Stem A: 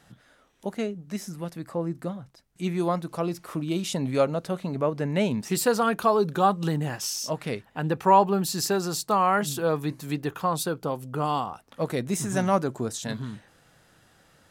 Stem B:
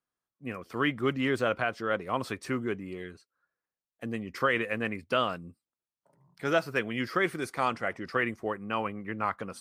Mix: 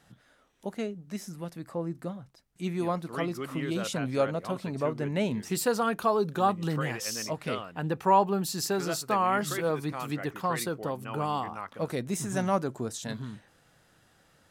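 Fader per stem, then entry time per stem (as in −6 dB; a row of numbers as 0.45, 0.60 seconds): −4.0, −9.0 decibels; 0.00, 2.35 seconds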